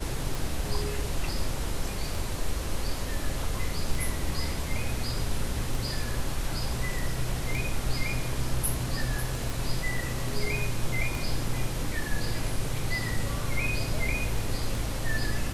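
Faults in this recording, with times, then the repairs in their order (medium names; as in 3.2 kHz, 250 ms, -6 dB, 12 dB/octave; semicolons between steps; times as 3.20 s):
tick 33 1/3 rpm
9.50 s: pop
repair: de-click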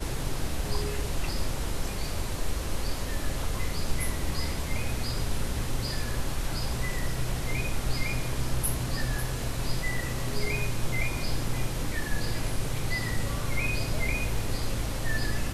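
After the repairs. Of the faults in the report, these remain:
nothing left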